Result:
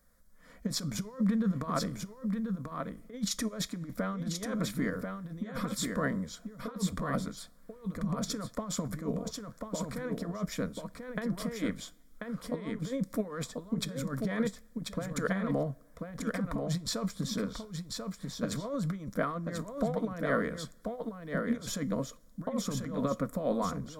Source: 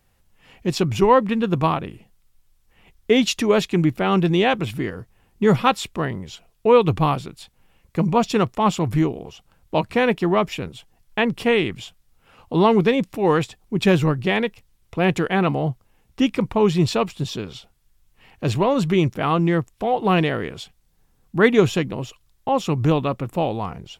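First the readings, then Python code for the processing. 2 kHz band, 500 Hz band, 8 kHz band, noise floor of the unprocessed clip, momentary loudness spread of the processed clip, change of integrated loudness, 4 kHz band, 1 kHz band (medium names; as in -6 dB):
-14.0 dB, -16.0 dB, -2.5 dB, -63 dBFS, 9 LU, -14.5 dB, -12.0 dB, -17.5 dB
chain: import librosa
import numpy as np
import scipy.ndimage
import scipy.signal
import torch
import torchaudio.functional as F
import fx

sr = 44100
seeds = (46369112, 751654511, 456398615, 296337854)

y = fx.over_compress(x, sr, threshold_db=-23.0, ratio=-0.5)
y = fx.fixed_phaser(y, sr, hz=550.0, stages=8)
y = y + 10.0 ** (-5.0 / 20.0) * np.pad(y, (int(1039 * sr / 1000.0), 0))[:len(y)]
y = fx.rev_double_slope(y, sr, seeds[0], early_s=0.29, late_s=2.0, knee_db=-21, drr_db=16.5)
y = F.gain(torch.from_numpy(y), -6.0).numpy()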